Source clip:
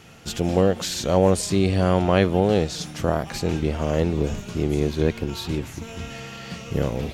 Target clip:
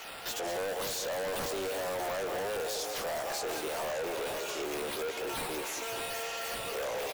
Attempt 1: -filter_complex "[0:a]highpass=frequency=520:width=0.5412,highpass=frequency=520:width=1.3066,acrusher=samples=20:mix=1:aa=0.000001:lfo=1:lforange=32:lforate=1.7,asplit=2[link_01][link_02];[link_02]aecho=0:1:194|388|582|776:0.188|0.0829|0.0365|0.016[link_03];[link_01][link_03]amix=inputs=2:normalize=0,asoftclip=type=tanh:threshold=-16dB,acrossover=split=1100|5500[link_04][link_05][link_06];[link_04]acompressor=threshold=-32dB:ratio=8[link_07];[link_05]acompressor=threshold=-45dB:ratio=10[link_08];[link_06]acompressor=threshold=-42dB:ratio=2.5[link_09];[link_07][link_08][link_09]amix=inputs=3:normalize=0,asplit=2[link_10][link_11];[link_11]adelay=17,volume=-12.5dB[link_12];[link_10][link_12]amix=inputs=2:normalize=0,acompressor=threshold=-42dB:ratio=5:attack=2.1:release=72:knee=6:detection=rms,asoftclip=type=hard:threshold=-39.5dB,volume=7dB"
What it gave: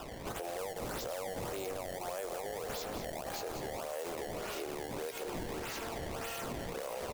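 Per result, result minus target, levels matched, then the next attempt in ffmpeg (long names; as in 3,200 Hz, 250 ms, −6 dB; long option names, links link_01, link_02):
downward compressor: peak gain reduction +14.5 dB; sample-and-hold swept by an LFO: distortion +13 dB; soft clipping: distortion −10 dB
-filter_complex "[0:a]highpass=frequency=520:width=0.5412,highpass=frequency=520:width=1.3066,acrusher=samples=20:mix=1:aa=0.000001:lfo=1:lforange=32:lforate=1.7,asplit=2[link_01][link_02];[link_02]aecho=0:1:194|388|582|776:0.188|0.0829|0.0365|0.016[link_03];[link_01][link_03]amix=inputs=2:normalize=0,asoftclip=type=tanh:threshold=-16dB,acrossover=split=1100|5500[link_04][link_05][link_06];[link_04]acompressor=threshold=-32dB:ratio=8[link_07];[link_05]acompressor=threshold=-45dB:ratio=10[link_08];[link_06]acompressor=threshold=-42dB:ratio=2.5[link_09];[link_07][link_08][link_09]amix=inputs=3:normalize=0,asplit=2[link_10][link_11];[link_11]adelay=17,volume=-12.5dB[link_12];[link_10][link_12]amix=inputs=2:normalize=0,asoftclip=type=hard:threshold=-39.5dB,volume=7dB"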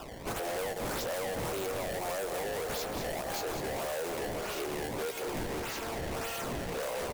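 sample-and-hold swept by an LFO: distortion +13 dB; soft clipping: distortion −10 dB
-filter_complex "[0:a]highpass=frequency=520:width=0.5412,highpass=frequency=520:width=1.3066,acrusher=samples=4:mix=1:aa=0.000001:lfo=1:lforange=6.4:lforate=1.7,asplit=2[link_01][link_02];[link_02]aecho=0:1:194|388|582|776:0.188|0.0829|0.0365|0.016[link_03];[link_01][link_03]amix=inputs=2:normalize=0,asoftclip=type=tanh:threshold=-16dB,acrossover=split=1100|5500[link_04][link_05][link_06];[link_04]acompressor=threshold=-32dB:ratio=8[link_07];[link_05]acompressor=threshold=-45dB:ratio=10[link_08];[link_06]acompressor=threshold=-42dB:ratio=2.5[link_09];[link_07][link_08][link_09]amix=inputs=3:normalize=0,asplit=2[link_10][link_11];[link_11]adelay=17,volume=-12.5dB[link_12];[link_10][link_12]amix=inputs=2:normalize=0,asoftclip=type=hard:threshold=-39.5dB,volume=7dB"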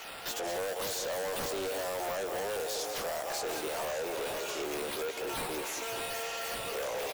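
soft clipping: distortion −10 dB
-filter_complex "[0:a]highpass=frequency=520:width=0.5412,highpass=frequency=520:width=1.3066,acrusher=samples=4:mix=1:aa=0.000001:lfo=1:lforange=6.4:lforate=1.7,asplit=2[link_01][link_02];[link_02]aecho=0:1:194|388|582|776:0.188|0.0829|0.0365|0.016[link_03];[link_01][link_03]amix=inputs=2:normalize=0,asoftclip=type=tanh:threshold=-27dB,acrossover=split=1100|5500[link_04][link_05][link_06];[link_04]acompressor=threshold=-32dB:ratio=8[link_07];[link_05]acompressor=threshold=-45dB:ratio=10[link_08];[link_06]acompressor=threshold=-42dB:ratio=2.5[link_09];[link_07][link_08][link_09]amix=inputs=3:normalize=0,asplit=2[link_10][link_11];[link_11]adelay=17,volume=-12.5dB[link_12];[link_10][link_12]amix=inputs=2:normalize=0,asoftclip=type=hard:threshold=-39.5dB,volume=7dB"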